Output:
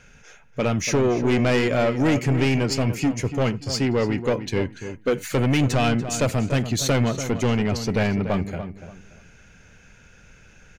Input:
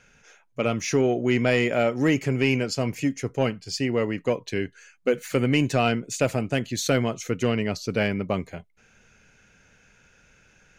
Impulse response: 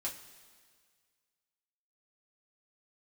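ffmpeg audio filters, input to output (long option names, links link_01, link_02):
-filter_complex "[0:a]lowshelf=frequency=140:gain=8,asoftclip=type=tanh:threshold=-20dB,asplit=2[link_01][link_02];[link_02]adelay=289,lowpass=frequency=2500:poles=1,volume=-10dB,asplit=2[link_03][link_04];[link_04]adelay=289,lowpass=frequency=2500:poles=1,volume=0.27,asplit=2[link_05][link_06];[link_06]adelay=289,lowpass=frequency=2500:poles=1,volume=0.27[link_07];[link_03][link_05][link_07]amix=inputs=3:normalize=0[link_08];[link_01][link_08]amix=inputs=2:normalize=0,volume=4.5dB"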